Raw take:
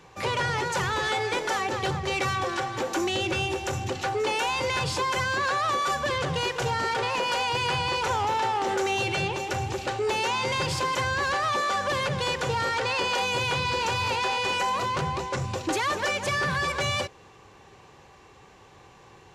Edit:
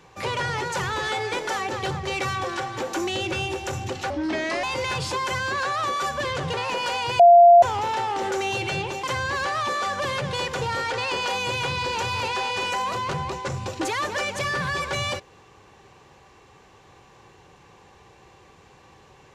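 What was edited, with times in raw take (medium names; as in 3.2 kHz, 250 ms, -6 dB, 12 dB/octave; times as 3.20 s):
4.10–4.49 s: speed 73%
6.39–6.99 s: delete
7.65–8.08 s: bleep 693 Hz -7.5 dBFS
9.49–10.91 s: delete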